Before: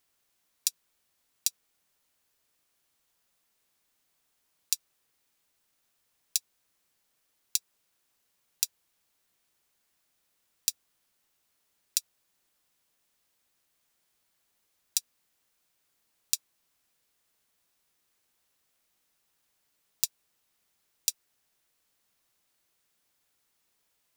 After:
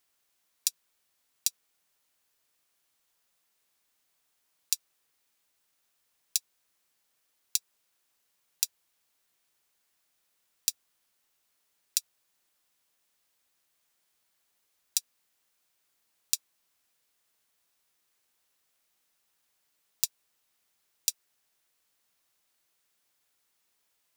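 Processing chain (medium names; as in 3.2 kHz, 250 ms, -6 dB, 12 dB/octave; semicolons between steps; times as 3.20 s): bass shelf 370 Hz -5.5 dB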